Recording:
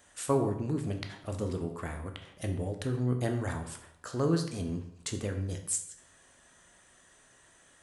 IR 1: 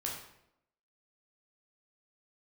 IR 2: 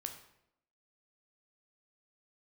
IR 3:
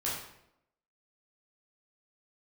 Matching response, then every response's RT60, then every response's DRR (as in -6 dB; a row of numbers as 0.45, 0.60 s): 2; 0.80, 0.80, 0.80 s; -3.0, 4.5, -7.5 dB